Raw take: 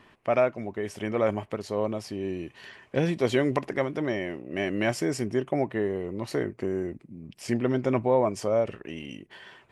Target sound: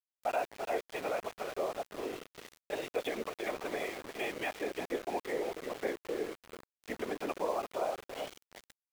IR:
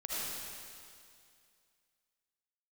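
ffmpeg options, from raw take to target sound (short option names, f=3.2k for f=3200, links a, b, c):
-af "bandreject=f=450:w=12,aecho=1:1:369|738|1107:0.316|0.0822|0.0214,aresample=8000,aresample=44100,highpass=f=340:w=0.5412,highpass=f=340:w=1.3066,alimiter=limit=-20dB:level=0:latency=1:release=190,asetrate=48000,aresample=44100,aecho=1:1:4.1:0.36,afftfilt=real='hypot(re,im)*cos(2*PI*random(0))':imag='hypot(re,im)*sin(2*PI*random(1))':win_size=512:overlap=0.75,aeval=exprs='val(0)*gte(abs(val(0)),0.00708)':c=same,volume=1.5dB"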